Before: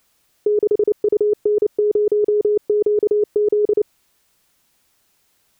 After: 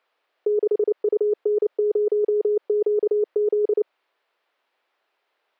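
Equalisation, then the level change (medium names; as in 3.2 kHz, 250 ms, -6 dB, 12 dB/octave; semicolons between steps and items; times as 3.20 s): high-pass 420 Hz 24 dB/octave; distance through air 400 m; 0.0 dB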